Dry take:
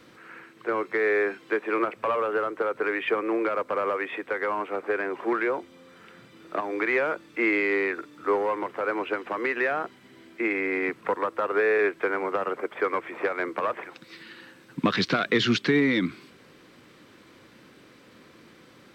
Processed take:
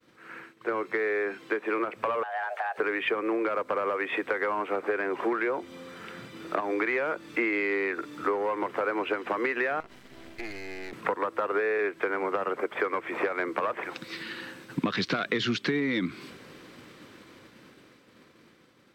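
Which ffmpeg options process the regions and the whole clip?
-filter_complex "[0:a]asettb=1/sr,asplit=3[s0][s1][s2];[s0]atrim=end=2.234[s3];[s1]atrim=start=2.23:end=2.78,asetpts=PTS-STARTPTS,afade=t=in:d=0.004:c=qsin,afade=t=out:st=0.546:d=0.004:c=qsin,acompressor=threshold=0.0158:ratio=3:attack=3.2:release=140:knee=1:detection=peak,afreqshift=290[s4];[s2]atrim=start=2.776[s5];[s3][s4]acrossfade=d=0.004:c1=hsin:c2=qsin[s6];[s6][s5]acrossfade=d=0.004:c1=qsin:c2=hsin,asettb=1/sr,asplit=3[s7][s8][s9];[s7]atrim=end=9.804[s10];[s8]atrim=start=9.8:end=10.93,asetpts=PTS-STARTPTS,afade=t=in:d=0.004:c=qsin,afade=t=out:st=1.126:d=0.004:c=qsin,acompressor=threshold=0.0126:ratio=10:attack=3.2:release=140:knee=1:detection=peak,aeval=exprs='max(val(0),0)':c=same[s11];[s9]atrim=start=10.926[s12];[s10][s11]acrossfade=d=0.004:c1=hsin:c2=qsin[s13];[s13][s12]acrossfade=d=0.004:c1=qsin:c2=hsin,dynaudnorm=f=400:g=11:m=2,agate=range=0.0224:threshold=0.00562:ratio=3:detection=peak,acompressor=threshold=0.0447:ratio=6,volume=1.19"

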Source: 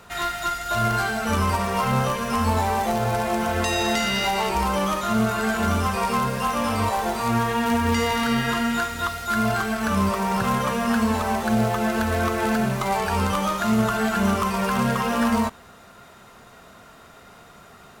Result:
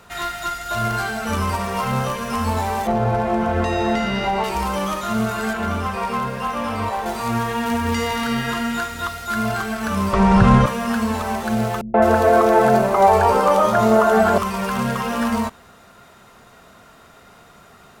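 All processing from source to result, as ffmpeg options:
-filter_complex "[0:a]asettb=1/sr,asplit=3[s0][s1][s2];[s0]atrim=end=2.874[s3];[s1]atrim=start=2.87:end=4.44,asetpts=PTS-STARTPTS,afade=t=in:d=0.004:c=qsin,afade=t=out:st=1.566:d=0.004:c=qsin,lowpass=f=1000:p=1,acontrast=31[s4];[s2]atrim=start=4.436[s5];[s3][s4]acrossfade=d=0.004:c1=hsin:c2=qsin[s6];[s6][s5]acrossfade=d=0.004:c1=qsin:c2=hsin,asettb=1/sr,asplit=3[s7][s8][s9];[s7]atrim=end=5.534[s10];[s8]atrim=start=5.53:end=7.06,asetpts=PTS-STARTPTS,afade=t=in:d=0.004:c=qsin,afade=t=out:st=1.526:d=0.004:c=qsin,bass=f=250:g=-2,treble=f=4000:g=-8,aeval=exprs='sgn(val(0))*max(abs(val(0))-0.00133,0)':c=same[s11];[s9]atrim=start=7.056[s12];[s10][s11]acrossfade=d=0.004:c1=hsin:c2=qsin[s13];[s13][s12]acrossfade=d=0.004:c1=qsin:c2=hsin,asettb=1/sr,asplit=3[s14][s15][s16];[s14]atrim=end=10.134[s17];[s15]atrim=start=10.13:end=10.66,asetpts=PTS-STARTPTS,afade=t=in:d=0.004:c=qsin,afade=t=out:st=0.526:d=0.004:c=qsin,acontrast=72,lowpass=f=11000:w=0.5412,lowpass=f=11000:w=1.3066,aemphasis=mode=reproduction:type=bsi[s18];[s16]atrim=start=10.656[s19];[s17][s18]acrossfade=d=0.004:c1=hsin:c2=qsin[s20];[s20][s19]acrossfade=d=0.004:c1=qsin:c2=hsin,asettb=1/sr,asplit=3[s21][s22][s23];[s21]atrim=end=11.814[s24];[s22]atrim=start=11.81:end=14.38,asetpts=PTS-STARTPTS,afade=t=in:d=0.004:c=qsin,afade=t=out:st=2.566:d=0.004:c=qsin,equalizer=f=590:t=o:w=2:g=14,acrossover=split=170|2700[s25][s26][s27];[s26]adelay=130[s28];[s27]adelay=210[s29];[s25][s28][s29]amix=inputs=3:normalize=0,atrim=end_sample=113337[s30];[s23]atrim=start=14.376[s31];[s24][s30]acrossfade=d=0.004:c1=hsin:c2=qsin[s32];[s32][s31]acrossfade=d=0.004:c1=qsin:c2=hsin"

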